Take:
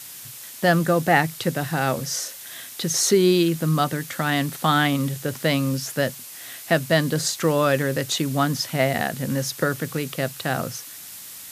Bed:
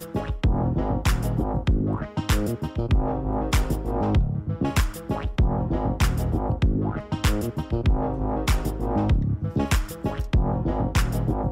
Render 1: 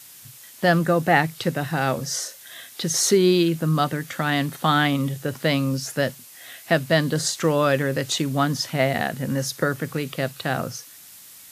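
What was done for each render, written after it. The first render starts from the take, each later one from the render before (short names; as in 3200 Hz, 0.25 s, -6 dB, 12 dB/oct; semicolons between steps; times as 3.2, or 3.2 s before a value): noise print and reduce 6 dB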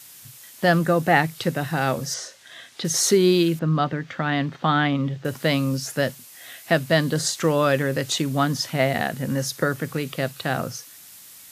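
2.14–2.85 air absorption 74 m; 3.59–5.25 air absorption 190 m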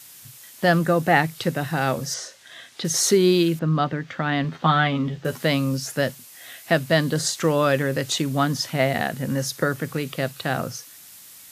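4.43–5.45 doubler 12 ms -4 dB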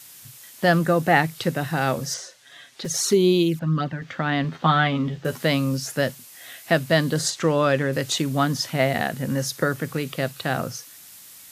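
2.17–4.02 envelope flanger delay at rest 8.6 ms, full sweep at -15 dBFS; 7.3–7.93 air absorption 50 m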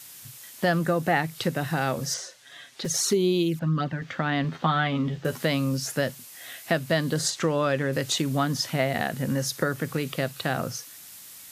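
compressor 2:1, threshold -23 dBFS, peak gain reduction 6.5 dB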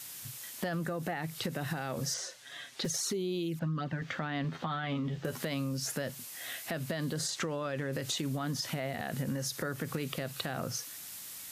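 limiter -19.5 dBFS, peak gain reduction 11 dB; compressor, threshold -31 dBFS, peak gain reduction 8.5 dB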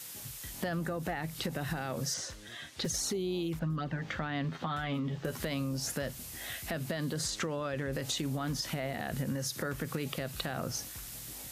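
add bed -28.5 dB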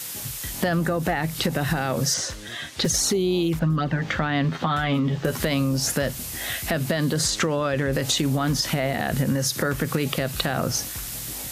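gain +11.5 dB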